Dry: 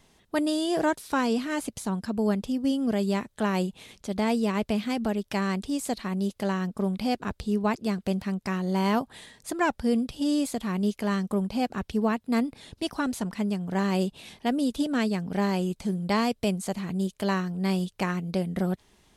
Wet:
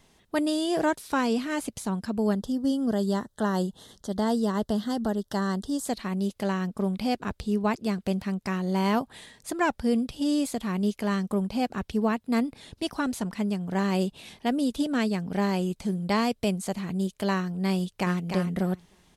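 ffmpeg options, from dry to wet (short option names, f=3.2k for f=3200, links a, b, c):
-filter_complex "[0:a]asettb=1/sr,asplit=3[a][b][c];[a]atrim=end=2.334[d];[b]atrim=start=2.33:end=5.87,asetpts=PTS-STARTPTS,afade=t=in:d=0.004:c=qsin,afade=t=out:st=3.536:d=0.004:c=qsin,asuperstop=centerf=2400:order=4:qfactor=1.8[e];[c]atrim=start=5.866[f];[d][e]acrossfade=d=0.004:c1=hsin:c2=qsin[g];[g][f]acrossfade=d=0.004:c1=qsin:c2=hsin,asplit=2[h][i];[i]afade=t=in:st=17.76:d=0.01,afade=t=out:st=18.25:d=0.01,aecho=0:1:300|600|900:0.501187|0.0751781|0.0112767[j];[h][j]amix=inputs=2:normalize=0"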